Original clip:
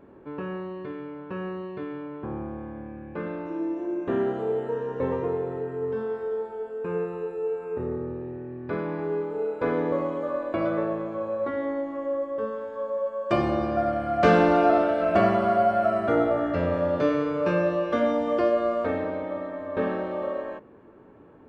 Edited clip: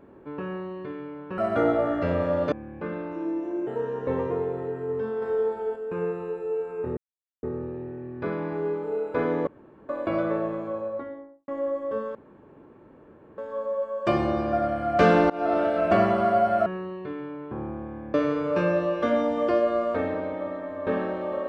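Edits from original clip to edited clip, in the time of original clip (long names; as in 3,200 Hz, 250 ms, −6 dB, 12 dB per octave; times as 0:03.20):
0:01.38–0:02.86: swap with 0:15.90–0:17.04
0:04.01–0:04.60: remove
0:06.15–0:06.69: clip gain +4.5 dB
0:07.90: splice in silence 0.46 s
0:09.94–0:10.36: fill with room tone
0:11.06–0:11.95: fade out and dull
0:12.62: splice in room tone 1.23 s
0:14.54–0:14.87: fade in, from −23.5 dB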